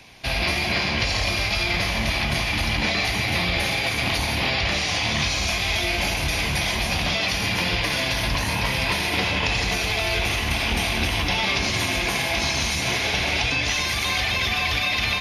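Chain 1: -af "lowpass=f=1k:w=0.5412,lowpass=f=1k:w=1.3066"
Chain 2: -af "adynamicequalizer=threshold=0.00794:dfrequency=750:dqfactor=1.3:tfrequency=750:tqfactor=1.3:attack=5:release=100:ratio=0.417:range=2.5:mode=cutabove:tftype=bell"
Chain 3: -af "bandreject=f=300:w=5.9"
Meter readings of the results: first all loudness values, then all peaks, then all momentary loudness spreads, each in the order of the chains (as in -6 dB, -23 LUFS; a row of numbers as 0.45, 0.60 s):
-29.5, -22.5, -22.0 LUFS; -13.5, -8.5, -8.5 dBFS; 3, 1, 1 LU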